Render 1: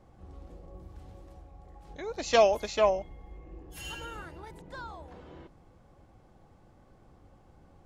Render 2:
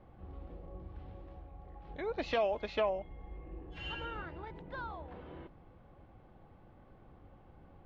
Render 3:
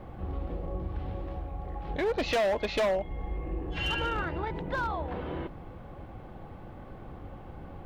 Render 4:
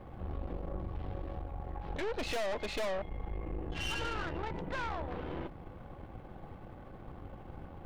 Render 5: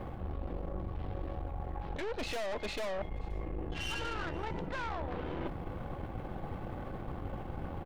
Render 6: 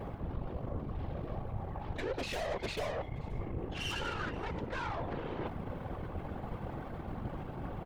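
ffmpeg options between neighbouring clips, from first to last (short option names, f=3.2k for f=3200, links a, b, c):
-af "lowpass=f=3.4k:w=0.5412,lowpass=f=3.4k:w=1.3066,alimiter=limit=-22dB:level=0:latency=1:release=389"
-filter_complex "[0:a]asplit=2[a][b];[b]acompressor=threshold=-44dB:ratio=6,volume=0.5dB[c];[a][c]amix=inputs=2:normalize=0,asoftclip=type=hard:threshold=-31dB,volume=7.5dB"
-af "aeval=exprs='(tanh(44.7*val(0)+0.7)-tanh(0.7))/44.7':c=same"
-af "areverse,acompressor=threshold=-43dB:ratio=6,areverse,aecho=1:1:528:0.0668,volume=9dB"
-af "afftfilt=real='hypot(re,im)*cos(2*PI*random(0))':imag='hypot(re,im)*sin(2*PI*random(1))':win_size=512:overlap=0.75,volume=6dB"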